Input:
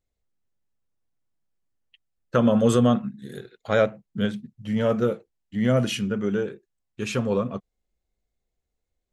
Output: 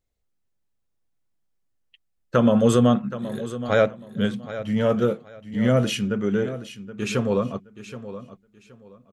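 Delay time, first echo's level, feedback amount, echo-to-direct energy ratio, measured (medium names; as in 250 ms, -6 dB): 773 ms, -13.5 dB, 24%, -13.5 dB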